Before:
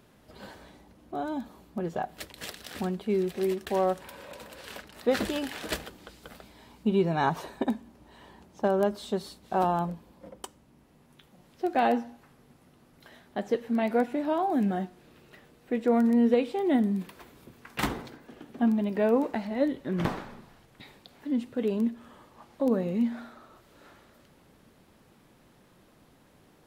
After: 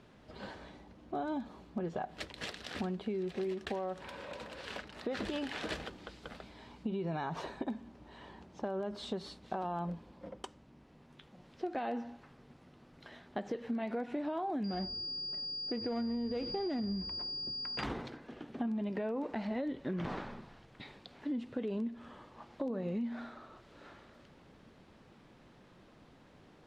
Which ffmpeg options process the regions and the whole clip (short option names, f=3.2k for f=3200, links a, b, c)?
-filter_complex "[0:a]asettb=1/sr,asplit=3[a][b][c];[a]atrim=end=14.644[d];[b]atrim=start=14.64:end=17.84,asetpts=PTS-STARTPTS,afade=t=in:d=0.004:c=qsin,afade=t=out:st=3.196:d=0.004:c=qsin,adynamicsmooth=sensitivity=6.5:basefreq=610,aeval=exprs='val(0)+0.02*sin(2*PI*4800*n/s)':c=same,asplit=5[e][f][g][h][i];[f]adelay=90,afreqshift=-140,volume=-23.5dB[j];[g]adelay=180,afreqshift=-280,volume=-28.5dB[k];[h]adelay=270,afreqshift=-420,volume=-33.6dB[l];[i]adelay=360,afreqshift=-560,volume=-38.6dB[m];[e][j][k][l][m]amix=inputs=5:normalize=0,atrim=end_sample=141120[n];[c]atrim=start=17.836[o];[d][n]acrossfade=d=0.004:c1=hsin:c2=qsin[p];[p][o]acrossfade=d=0.004:c1=qsin:c2=hsin,alimiter=limit=-22.5dB:level=0:latency=1:release=72,lowpass=5.1k,acompressor=threshold=-33dB:ratio=6"